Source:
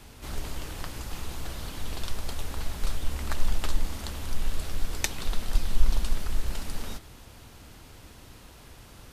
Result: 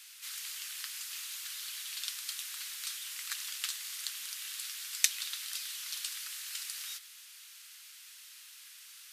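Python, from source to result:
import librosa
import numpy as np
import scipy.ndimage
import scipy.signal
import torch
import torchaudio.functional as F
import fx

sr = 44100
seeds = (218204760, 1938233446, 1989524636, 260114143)

p1 = scipy.signal.sosfilt(scipy.signal.bessel(6, 2400.0, 'highpass', norm='mag', fs=sr, output='sos'), x)
p2 = fx.high_shelf(p1, sr, hz=4200.0, db=3.5)
p3 = fx.quant_float(p2, sr, bits=2)
y = p2 + (p3 * 10.0 ** (-10.0 / 20.0))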